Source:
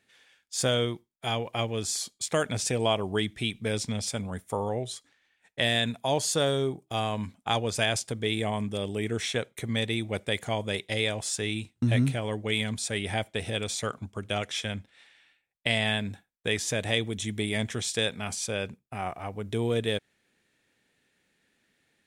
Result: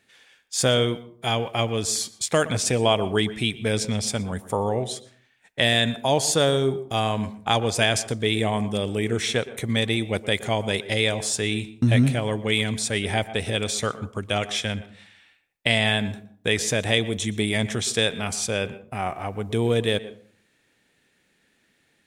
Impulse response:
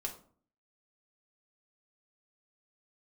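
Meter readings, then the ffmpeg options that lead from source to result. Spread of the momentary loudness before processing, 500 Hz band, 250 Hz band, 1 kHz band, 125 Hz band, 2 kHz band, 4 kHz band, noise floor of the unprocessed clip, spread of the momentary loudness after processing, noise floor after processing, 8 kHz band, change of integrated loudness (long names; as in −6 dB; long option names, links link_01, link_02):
8 LU, +5.5 dB, +6.0 dB, +5.5 dB, +5.5 dB, +5.5 dB, +5.5 dB, −74 dBFS, 8 LU, −66 dBFS, +5.5 dB, +5.5 dB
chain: -filter_complex "[0:a]asplit=2[link_01][link_02];[1:a]atrim=start_sample=2205,highshelf=frequency=3600:gain=-11.5,adelay=118[link_03];[link_02][link_03]afir=irnorm=-1:irlink=0,volume=-13.5dB[link_04];[link_01][link_04]amix=inputs=2:normalize=0,volume=5.5dB"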